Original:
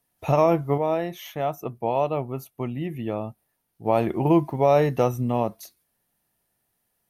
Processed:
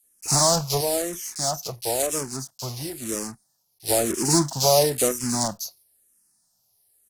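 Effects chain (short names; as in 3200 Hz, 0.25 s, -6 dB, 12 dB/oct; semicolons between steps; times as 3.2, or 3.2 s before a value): block floating point 3-bit; band shelf 7300 Hz +15.5 dB; bands offset in time highs, lows 30 ms, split 2200 Hz; endless phaser -1 Hz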